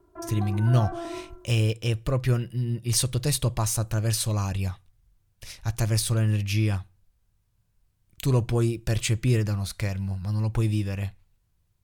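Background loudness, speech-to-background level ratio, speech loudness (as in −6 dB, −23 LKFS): −36.5 LKFS, 10.5 dB, −26.0 LKFS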